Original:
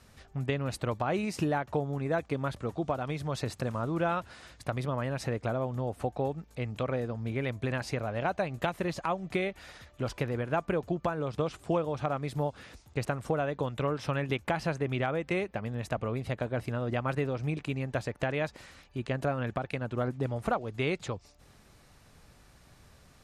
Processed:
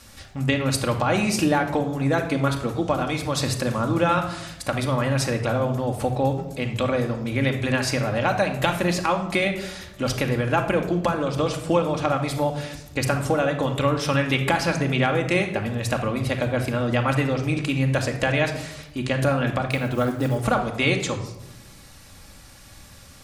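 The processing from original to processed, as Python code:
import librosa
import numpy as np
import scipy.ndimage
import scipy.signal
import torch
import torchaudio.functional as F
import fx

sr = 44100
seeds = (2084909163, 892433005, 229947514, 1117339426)

y = fx.block_float(x, sr, bits=7, at=(19.7, 20.38))
y = fx.high_shelf(y, sr, hz=2700.0, db=10.0)
y = fx.room_shoebox(y, sr, seeds[0], volume_m3=2800.0, walls='furnished', distance_m=2.3)
y = F.gain(torch.from_numpy(y), 6.0).numpy()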